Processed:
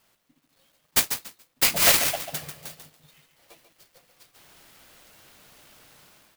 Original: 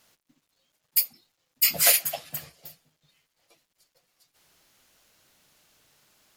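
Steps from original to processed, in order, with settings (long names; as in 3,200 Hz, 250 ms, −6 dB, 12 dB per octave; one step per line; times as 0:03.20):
automatic gain control gain up to 12 dB
repeating echo 142 ms, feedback 20%, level −8 dB
converter with an unsteady clock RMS 0.039 ms
level −2 dB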